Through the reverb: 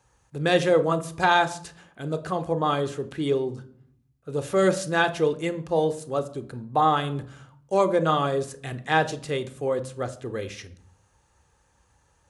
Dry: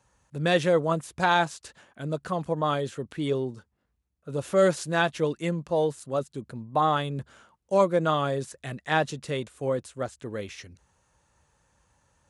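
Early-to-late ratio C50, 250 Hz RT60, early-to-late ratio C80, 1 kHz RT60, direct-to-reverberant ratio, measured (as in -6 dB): 16.0 dB, 1.0 s, 19.5 dB, 0.60 s, 11.5 dB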